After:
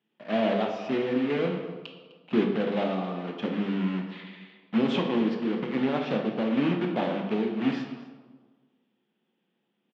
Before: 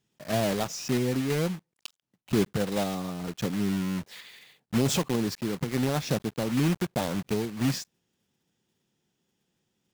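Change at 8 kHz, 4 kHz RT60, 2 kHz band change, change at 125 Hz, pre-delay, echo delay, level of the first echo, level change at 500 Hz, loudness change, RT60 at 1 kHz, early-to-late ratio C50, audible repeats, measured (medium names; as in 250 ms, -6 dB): under -25 dB, 0.90 s, +1.0 dB, -5.5 dB, 14 ms, 254 ms, -18.0 dB, +2.5 dB, +1.0 dB, 1.4 s, 5.0 dB, 1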